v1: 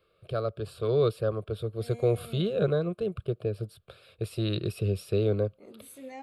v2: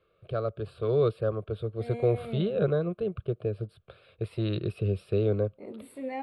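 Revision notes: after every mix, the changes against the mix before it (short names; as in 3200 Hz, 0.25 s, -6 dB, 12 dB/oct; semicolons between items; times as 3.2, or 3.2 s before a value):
second voice +8.0 dB; master: add running mean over 7 samples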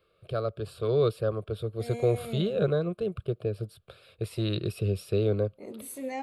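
master: remove running mean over 7 samples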